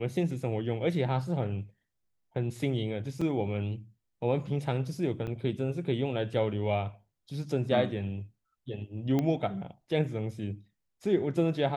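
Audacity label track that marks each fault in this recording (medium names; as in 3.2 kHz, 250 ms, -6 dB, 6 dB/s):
3.210000	3.210000	dropout 5 ms
5.270000	5.280000	dropout 6.9 ms
9.190000	9.190000	pop -17 dBFS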